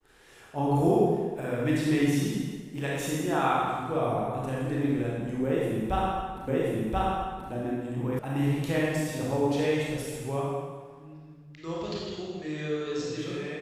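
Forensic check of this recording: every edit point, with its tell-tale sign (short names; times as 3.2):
6.48 repeat of the last 1.03 s
8.19 sound cut off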